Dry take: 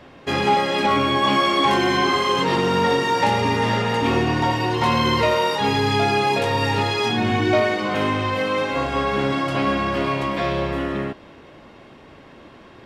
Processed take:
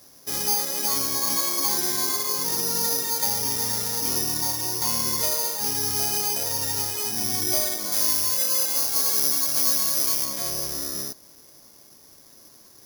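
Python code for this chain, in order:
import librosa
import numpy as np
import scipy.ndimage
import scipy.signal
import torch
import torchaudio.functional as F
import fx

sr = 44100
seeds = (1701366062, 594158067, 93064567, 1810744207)

y = (np.kron(scipy.signal.resample_poly(x, 1, 8), np.eye(8)[0]) * 8)[:len(x)]
y = fx.tilt_eq(y, sr, slope=1.5, at=(7.92, 10.25))
y = y * 10.0 ** (-14.5 / 20.0)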